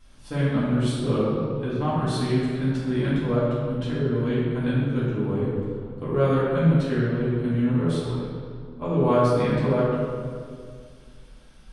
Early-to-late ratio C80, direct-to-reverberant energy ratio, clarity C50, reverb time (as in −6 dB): 0.0 dB, −10.5 dB, −2.5 dB, 2.1 s